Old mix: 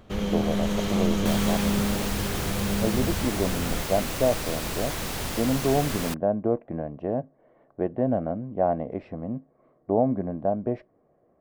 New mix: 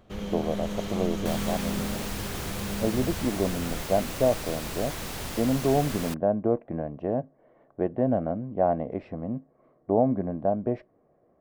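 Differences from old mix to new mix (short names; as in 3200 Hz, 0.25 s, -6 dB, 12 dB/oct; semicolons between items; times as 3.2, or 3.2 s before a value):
first sound -6.5 dB; second sound -4.0 dB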